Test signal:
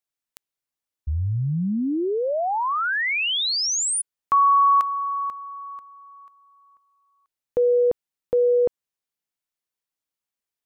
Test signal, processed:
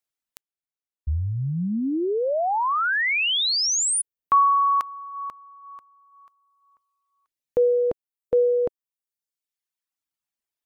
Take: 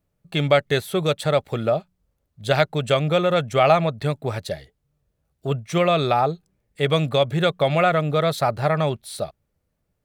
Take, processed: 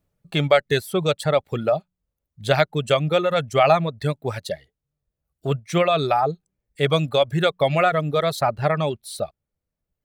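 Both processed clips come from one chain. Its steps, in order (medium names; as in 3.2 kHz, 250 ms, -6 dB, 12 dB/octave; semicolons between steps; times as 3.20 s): reverb removal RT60 1.2 s; trim +1 dB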